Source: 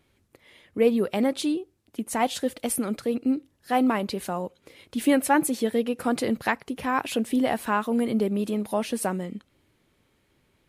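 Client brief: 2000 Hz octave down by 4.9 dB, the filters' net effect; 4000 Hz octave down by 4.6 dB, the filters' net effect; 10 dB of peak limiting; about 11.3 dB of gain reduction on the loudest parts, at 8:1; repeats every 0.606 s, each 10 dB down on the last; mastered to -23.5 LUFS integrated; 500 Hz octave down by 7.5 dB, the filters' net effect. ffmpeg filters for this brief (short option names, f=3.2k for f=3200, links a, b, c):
-af "equalizer=f=500:t=o:g=-8.5,equalizer=f=2k:t=o:g=-5,equalizer=f=4k:t=o:g=-4,acompressor=threshold=-31dB:ratio=8,alimiter=level_in=6.5dB:limit=-24dB:level=0:latency=1,volume=-6.5dB,aecho=1:1:606|1212|1818|2424:0.316|0.101|0.0324|0.0104,volume=16dB"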